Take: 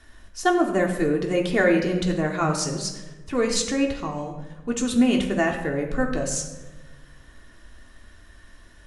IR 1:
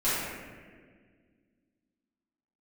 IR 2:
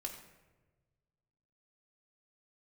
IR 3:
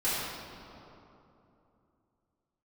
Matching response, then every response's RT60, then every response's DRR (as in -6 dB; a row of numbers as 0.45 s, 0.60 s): 2; 1.7 s, 1.2 s, 3.0 s; -14.0 dB, 0.5 dB, -13.5 dB